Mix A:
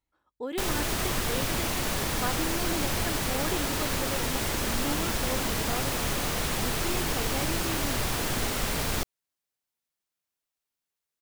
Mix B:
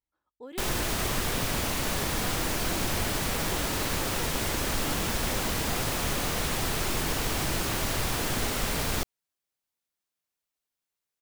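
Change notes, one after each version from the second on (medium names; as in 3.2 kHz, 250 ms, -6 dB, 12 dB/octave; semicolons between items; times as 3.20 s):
speech -9.0 dB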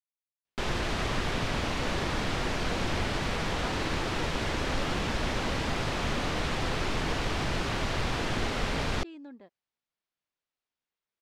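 speech: entry +1.40 s; master: add low-pass 4.1 kHz 12 dB/octave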